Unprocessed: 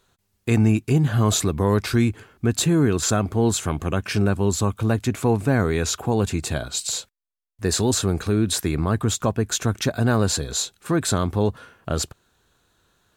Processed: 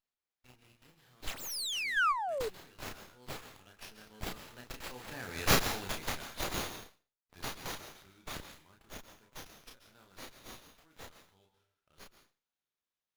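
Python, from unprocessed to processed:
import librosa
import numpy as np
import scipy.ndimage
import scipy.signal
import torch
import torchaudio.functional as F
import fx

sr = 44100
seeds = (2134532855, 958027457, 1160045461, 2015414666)

y = fx.doppler_pass(x, sr, speed_mps=23, closest_m=5.8, pass_at_s=5.6)
y = librosa.effects.preemphasis(y, coef=0.97, zi=[0.0])
y = fx.notch(y, sr, hz=1100.0, q=12.0)
y = fx.doubler(y, sr, ms=32.0, db=-3.5)
y = fx.rev_plate(y, sr, seeds[0], rt60_s=0.59, hf_ratio=0.6, predelay_ms=120, drr_db=7.5)
y = fx.spec_paint(y, sr, seeds[1], shape='fall', start_s=1.27, length_s=1.22, low_hz=410.0, high_hz=11000.0, level_db=-35.0)
y = fx.peak_eq(y, sr, hz=10000.0, db=8.0, octaves=1.6)
y = fx.spec_box(y, sr, start_s=1.97, length_s=0.44, low_hz=1100.0, high_hz=9400.0, gain_db=8)
y = fx.running_max(y, sr, window=5)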